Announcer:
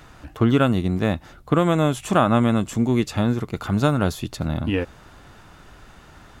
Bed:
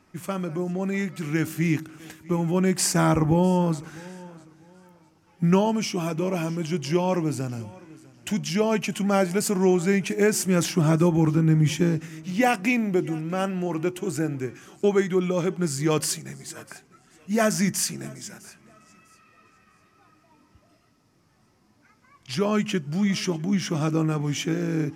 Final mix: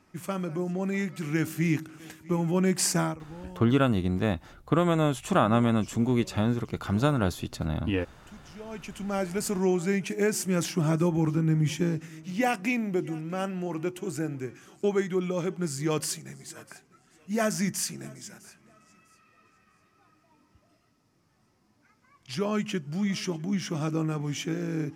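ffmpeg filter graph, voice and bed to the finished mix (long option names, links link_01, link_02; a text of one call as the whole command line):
ffmpeg -i stem1.wav -i stem2.wav -filter_complex "[0:a]adelay=3200,volume=-5dB[link_01];[1:a]volume=15.5dB,afade=type=out:start_time=2.93:duration=0.24:silence=0.0944061,afade=type=in:start_time=8.57:duration=0.93:silence=0.125893[link_02];[link_01][link_02]amix=inputs=2:normalize=0" out.wav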